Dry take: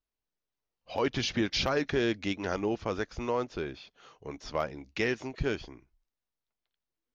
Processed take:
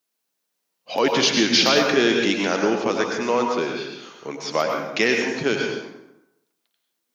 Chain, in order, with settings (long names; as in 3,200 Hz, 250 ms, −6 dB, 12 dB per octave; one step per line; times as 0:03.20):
high-pass filter 170 Hz 24 dB per octave
high-shelf EQ 4,100 Hz +9 dB
dense smooth reverb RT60 0.9 s, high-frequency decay 0.65×, pre-delay 85 ms, DRR 1.5 dB
level +8.5 dB